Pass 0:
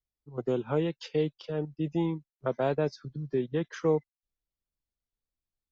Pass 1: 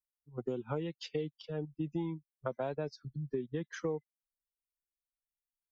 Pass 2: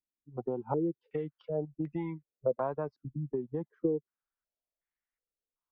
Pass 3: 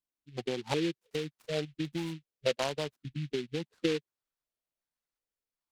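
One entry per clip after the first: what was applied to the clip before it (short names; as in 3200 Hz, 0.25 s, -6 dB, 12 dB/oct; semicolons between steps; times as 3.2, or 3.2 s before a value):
per-bin expansion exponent 1.5; compressor, threshold -32 dBFS, peak gain reduction 10 dB
stepped low-pass 2.7 Hz 290–1900 Hz
noise-modulated delay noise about 2700 Hz, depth 0.12 ms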